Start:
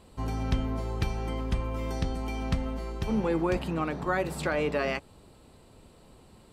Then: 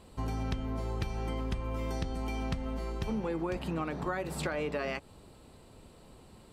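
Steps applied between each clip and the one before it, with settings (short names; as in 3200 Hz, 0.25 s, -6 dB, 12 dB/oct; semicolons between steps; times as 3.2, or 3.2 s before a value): compressor, threshold -30 dBFS, peak gain reduction 9.5 dB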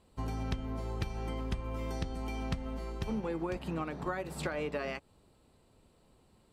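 upward expander 1.5:1, over -50 dBFS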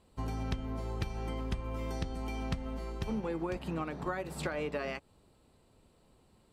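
nothing audible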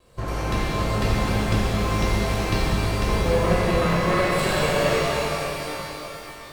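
minimum comb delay 1.8 ms; shimmer reverb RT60 3.6 s, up +12 st, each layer -8 dB, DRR -9 dB; gain +7.5 dB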